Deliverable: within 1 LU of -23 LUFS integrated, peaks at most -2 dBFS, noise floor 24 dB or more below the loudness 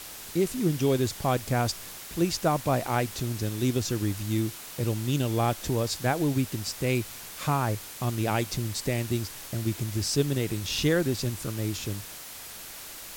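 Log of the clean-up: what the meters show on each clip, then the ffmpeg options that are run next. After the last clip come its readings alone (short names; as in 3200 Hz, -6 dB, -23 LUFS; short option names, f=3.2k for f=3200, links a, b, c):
noise floor -42 dBFS; noise floor target -53 dBFS; loudness -28.5 LUFS; peak -11.5 dBFS; loudness target -23.0 LUFS
-> -af "afftdn=nr=11:nf=-42"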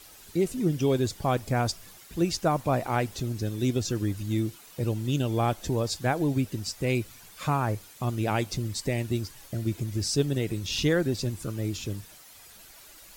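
noise floor -51 dBFS; noise floor target -53 dBFS
-> -af "afftdn=nr=6:nf=-51"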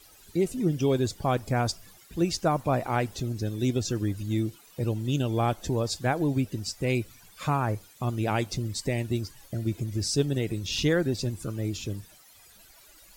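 noise floor -55 dBFS; loudness -28.5 LUFS; peak -12.0 dBFS; loudness target -23.0 LUFS
-> -af "volume=5.5dB"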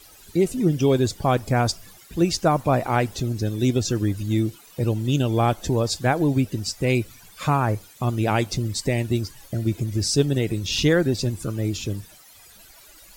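loudness -23.0 LUFS; peak -6.5 dBFS; noise floor -49 dBFS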